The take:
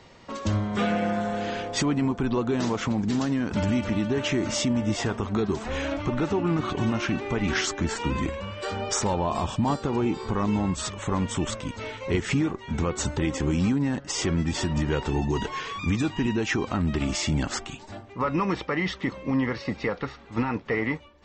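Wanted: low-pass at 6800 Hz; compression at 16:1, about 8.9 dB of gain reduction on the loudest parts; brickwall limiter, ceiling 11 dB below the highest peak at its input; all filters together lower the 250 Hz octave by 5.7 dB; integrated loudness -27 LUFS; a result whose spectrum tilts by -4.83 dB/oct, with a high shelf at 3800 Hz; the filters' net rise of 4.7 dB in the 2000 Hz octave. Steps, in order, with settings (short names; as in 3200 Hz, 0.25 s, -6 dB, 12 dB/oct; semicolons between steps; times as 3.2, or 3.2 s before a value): LPF 6800 Hz; bell 250 Hz -7.5 dB; bell 2000 Hz +6.5 dB; high shelf 3800 Hz -3.5 dB; compressor 16:1, threshold -29 dBFS; gain +10 dB; limiter -18 dBFS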